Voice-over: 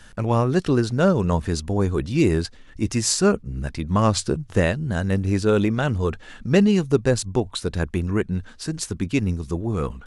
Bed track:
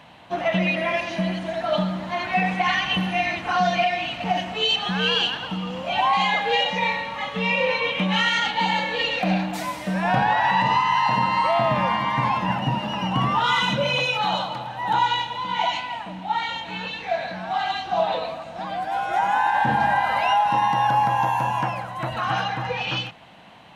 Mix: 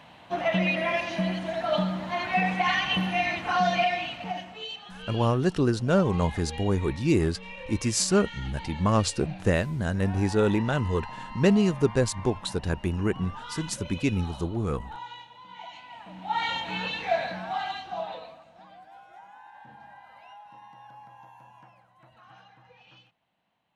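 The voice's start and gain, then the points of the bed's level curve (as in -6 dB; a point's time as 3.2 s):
4.90 s, -4.0 dB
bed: 3.92 s -3 dB
4.9 s -20 dB
15.7 s -20 dB
16.47 s -0.5 dB
17.16 s -0.5 dB
19.32 s -29 dB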